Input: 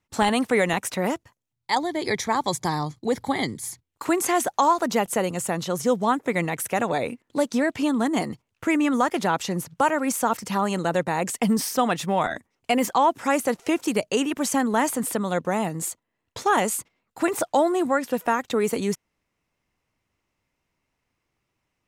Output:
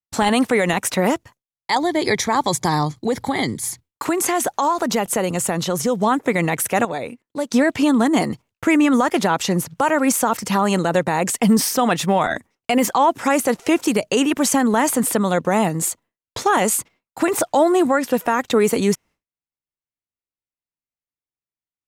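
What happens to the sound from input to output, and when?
2.93–6.01 compressor 3:1, threshold -24 dBFS
6.85–7.51 gain -9 dB
whole clip: expander -47 dBFS; limiter -15 dBFS; gain +7.5 dB

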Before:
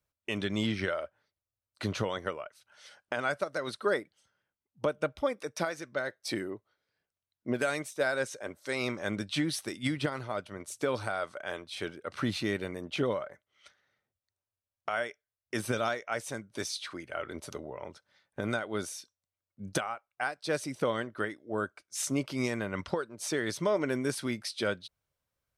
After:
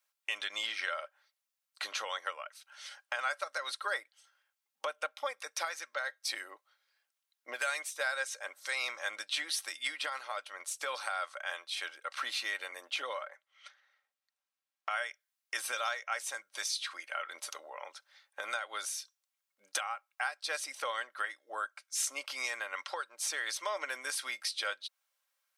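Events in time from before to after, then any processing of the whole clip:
13.29–14.9 LPF 3400 Hz 6 dB/oct
whole clip: Bessel high-pass 1100 Hz, order 4; comb 3.7 ms, depth 39%; compressor 1.5:1, threshold -47 dBFS; gain +6.5 dB

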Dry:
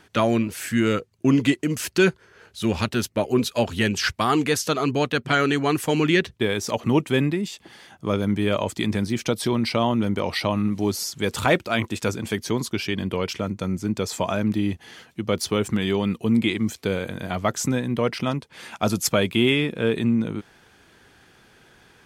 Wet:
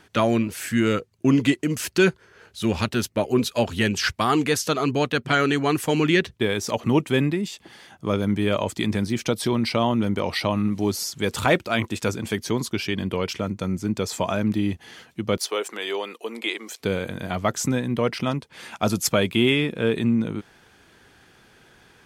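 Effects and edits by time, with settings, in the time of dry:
15.37–16.8 HPF 410 Hz 24 dB/oct

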